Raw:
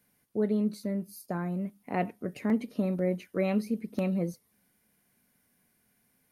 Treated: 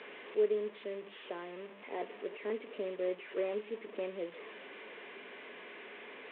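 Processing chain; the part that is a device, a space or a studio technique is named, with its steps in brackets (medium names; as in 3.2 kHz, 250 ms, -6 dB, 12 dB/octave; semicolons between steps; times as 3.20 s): digital answering machine (band-pass 320–3300 Hz; one-bit delta coder 16 kbps, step -38 dBFS; cabinet simulation 400–3900 Hz, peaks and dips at 410 Hz +10 dB, 780 Hz -7 dB, 1.4 kHz -7 dB, 3.6 kHz +4 dB); trim -3.5 dB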